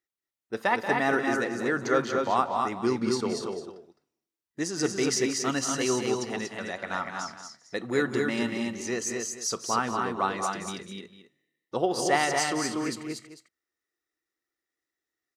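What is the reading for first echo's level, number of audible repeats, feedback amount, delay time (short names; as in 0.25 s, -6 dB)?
-11.0 dB, 4, no steady repeat, 0.182 s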